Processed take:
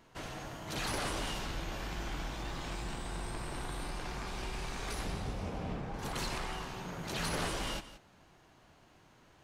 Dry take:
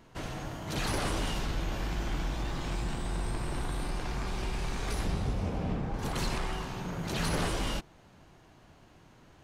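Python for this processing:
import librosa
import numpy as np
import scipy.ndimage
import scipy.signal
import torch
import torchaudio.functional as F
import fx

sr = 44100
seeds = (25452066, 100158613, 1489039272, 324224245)

p1 = fx.low_shelf(x, sr, hz=370.0, db=-6.0)
p2 = p1 + fx.echo_single(p1, sr, ms=174, db=-14.5, dry=0)
y = F.gain(torch.from_numpy(p2), -2.0).numpy()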